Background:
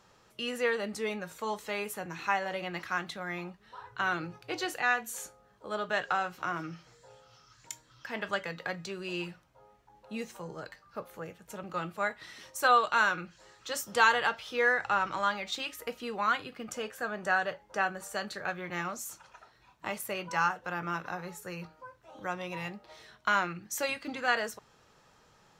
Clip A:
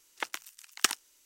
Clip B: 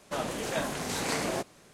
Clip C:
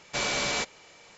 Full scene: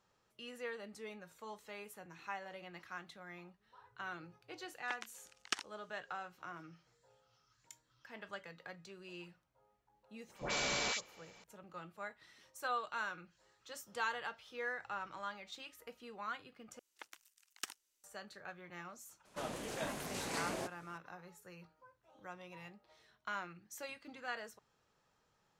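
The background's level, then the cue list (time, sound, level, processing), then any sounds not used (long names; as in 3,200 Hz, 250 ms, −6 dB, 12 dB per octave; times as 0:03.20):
background −14.5 dB
0:04.68: mix in A −10 dB + low-pass filter 5,700 Hz
0:10.27: mix in C −7.5 dB + all-pass dispersion highs, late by 97 ms, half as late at 1,400 Hz
0:16.79: overwrite with A −18 dB
0:19.25: mix in B −9.5 dB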